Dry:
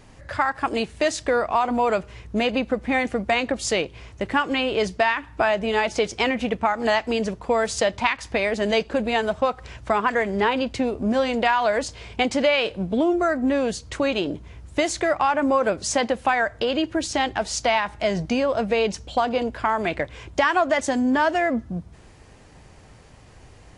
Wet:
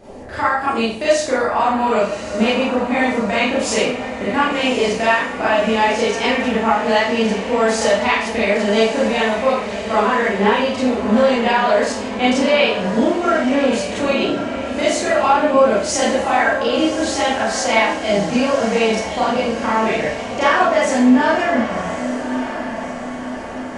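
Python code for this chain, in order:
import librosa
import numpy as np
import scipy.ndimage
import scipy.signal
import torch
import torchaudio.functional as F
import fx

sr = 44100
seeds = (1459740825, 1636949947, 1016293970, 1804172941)

y = fx.echo_diffused(x, sr, ms=1158, feedback_pct=55, wet_db=-9.5)
y = fx.dmg_noise_band(y, sr, seeds[0], low_hz=160.0, high_hz=770.0, level_db=-42.0)
y = fx.rev_schroeder(y, sr, rt60_s=0.48, comb_ms=28, drr_db=-8.5)
y = y * librosa.db_to_amplitude(-4.0)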